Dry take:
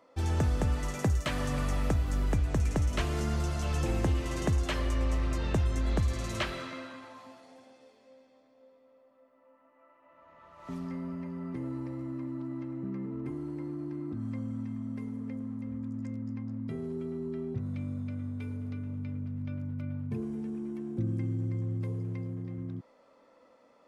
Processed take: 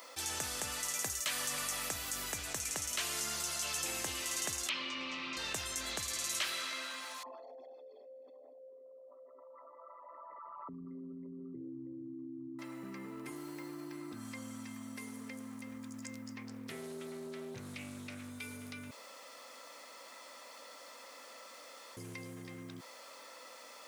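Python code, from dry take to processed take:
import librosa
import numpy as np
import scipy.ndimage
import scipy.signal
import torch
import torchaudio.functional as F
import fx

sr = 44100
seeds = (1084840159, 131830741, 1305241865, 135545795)

y = fx.cabinet(x, sr, low_hz=170.0, low_slope=12, high_hz=4100.0, hz=(170.0, 270.0, 450.0, 690.0, 1700.0, 2500.0), db=(4, 6, -8, -10, -9, 5), at=(4.69, 5.37))
y = fx.envelope_sharpen(y, sr, power=3.0, at=(7.23, 12.59))
y = fx.resample_linear(y, sr, factor=2, at=(13.35, 13.93))
y = fx.doppler_dist(y, sr, depth_ms=0.39, at=(16.37, 18.3))
y = fx.edit(y, sr, fx.room_tone_fill(start_s=18.91, length_s=3.06), tone=tone)
y = np.diff(y, prepend=0.0)
y = fx.env_flatten(y, sr, amount_pct=50)
y = F.gain(torch.from_numpy(y), 6.5).numpy()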